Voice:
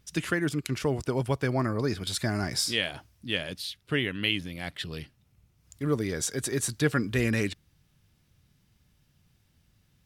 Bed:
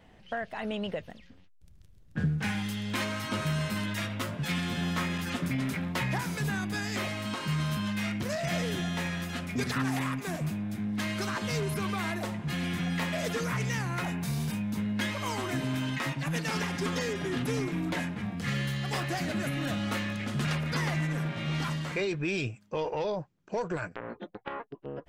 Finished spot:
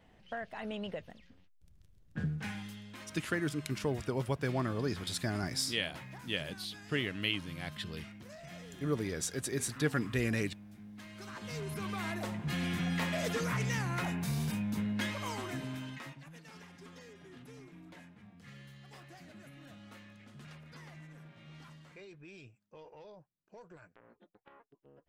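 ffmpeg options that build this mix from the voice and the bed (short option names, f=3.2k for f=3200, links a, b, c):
-filter_complex "[0:a]adelay=3000,volume=-6dB[a];[1:a]volume=9.5dB,afade=t=out:st=2.18:d=0.78:silence=0.251189,afade=t=in:st=11.11:d=1.42:silence=0.16788,afade=t=out:st=14.76:d=1.54:silence=0.112202[b];[a][b]amix=inputs=2:normalize=0"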